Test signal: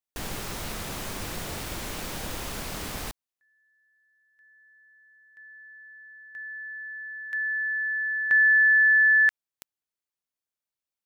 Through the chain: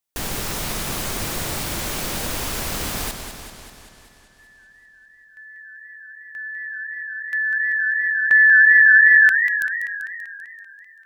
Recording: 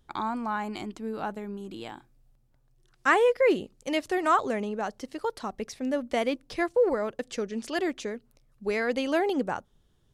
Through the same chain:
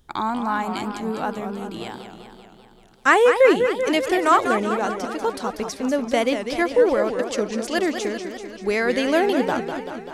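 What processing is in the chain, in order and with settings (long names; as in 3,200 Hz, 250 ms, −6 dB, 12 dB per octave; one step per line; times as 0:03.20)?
high-shelf EQ 5,200 Hz +4.5 dB
feedback echo with a swinging delay time 194 ms, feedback 65%, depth 213 cents, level −8 dB
level +6 dB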